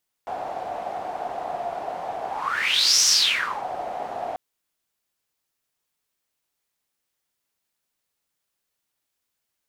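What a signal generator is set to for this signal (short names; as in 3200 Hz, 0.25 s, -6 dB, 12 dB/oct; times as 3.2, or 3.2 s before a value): whoosh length 4.09 s, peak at 2.78, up 0.84 s, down 0.64 s, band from 720 Hz, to 5800 Hz, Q 7.8, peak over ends 14 dB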